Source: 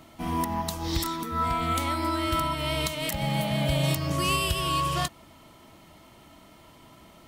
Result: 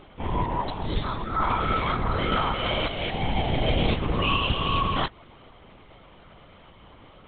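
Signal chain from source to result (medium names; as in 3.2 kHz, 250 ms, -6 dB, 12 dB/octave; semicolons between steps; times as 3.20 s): LPC vocoder at 8 kHz whisper; trim +2.5 dB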